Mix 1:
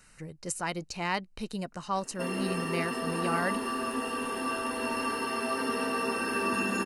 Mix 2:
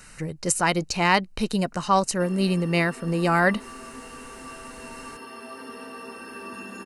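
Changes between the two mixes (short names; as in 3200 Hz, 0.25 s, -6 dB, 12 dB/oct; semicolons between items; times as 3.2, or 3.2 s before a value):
speech +11.0 dB; background -9.0 dB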